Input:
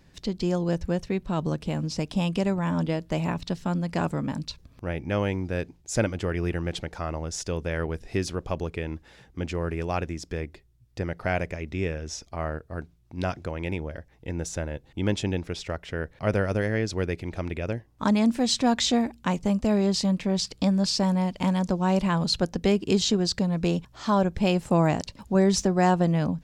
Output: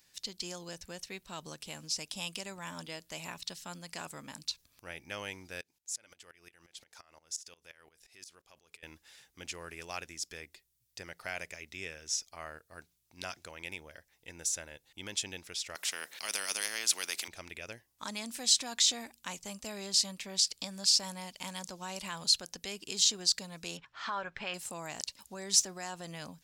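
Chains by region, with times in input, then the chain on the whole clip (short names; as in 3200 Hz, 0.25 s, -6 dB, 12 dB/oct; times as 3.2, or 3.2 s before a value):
5.61–8.83 low shelf 350 Hz -6.5 dB + compressor 4:1, threshold -35 dBFS + dB-ramp tremolo swelling 5.7 Hz, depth 19 dB
15.75–17.28 HPF 230 Hz 24 dB/oct + spectral compressor 2:1
23.77–24.54 LPF 2800 Hz + bell 1500 Hz +11.5 dB 1.6 oct + comb 7.3 ms, depth 31%
whole clip: limiter -15.5 dBFS; pre-emphasis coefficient 0.97; gain +5.5 dB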